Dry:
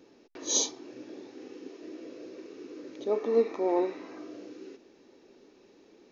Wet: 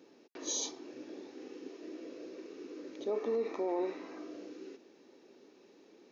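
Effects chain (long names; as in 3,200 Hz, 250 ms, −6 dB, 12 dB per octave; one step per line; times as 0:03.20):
high-pass filter 160 Hz 12 dB per octave
brickwall limiter −24 dBFS, peak gain reduction 9.5 dB
level −2 dB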